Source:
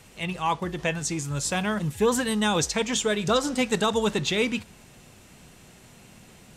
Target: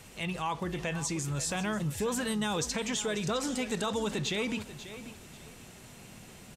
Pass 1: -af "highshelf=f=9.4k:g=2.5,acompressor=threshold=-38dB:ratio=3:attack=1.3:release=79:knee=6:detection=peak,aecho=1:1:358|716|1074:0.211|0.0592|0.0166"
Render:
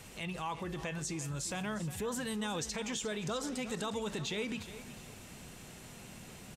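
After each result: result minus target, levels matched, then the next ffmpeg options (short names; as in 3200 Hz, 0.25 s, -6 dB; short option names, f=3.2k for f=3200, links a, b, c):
echo 0.181 s early; compressor: peak gain reduction +5.5 dB
-af "highshelf=f=9.4k:g=2.5,acompressor=threshold=-38dB:ratio=3:attack=1.3:release=79:knee=6:detection=peak,aecho=1:1:539|1078|1617:0.211|0.0592|0.0166"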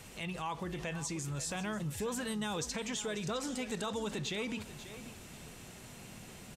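compressor: peak gain reduction +5.5 dB
-af "highshelf=f=9.4k:g=2.5,acompressor=threshold=-30dB:ratio=3:attack=1.3:release=79:knee=6:detection=peak,aecho=1:1:539|1078|1617:0.211|0.0592|0.0166"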